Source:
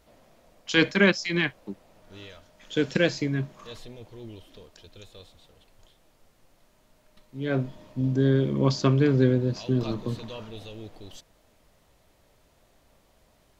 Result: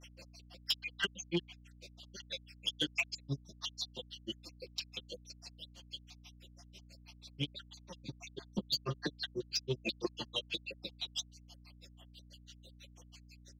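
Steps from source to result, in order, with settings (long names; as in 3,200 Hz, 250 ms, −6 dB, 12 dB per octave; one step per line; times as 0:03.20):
time-frequency cells dropped at random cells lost 58%
high-pass filter 190 Hz
flat-topped bell 4,000 Hz +16 dB
downward compressor 2.5 to 1, threshold −36 dBFS, peak gain reduction 16.5 dB
flanger 1.3 Hz, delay 1.1 ms, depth 9.2 ms, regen +23%
comb filter 5.7 ms, depth 85%
granular cloud 91 ms, grains 6.1 per second, spray 37 ms, pitch spread up and down by 0 semitones
soft clipping −30.5 dBFS, distortion −16 dB
mains hum 60 Hz, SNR 15 dB
level +7 dB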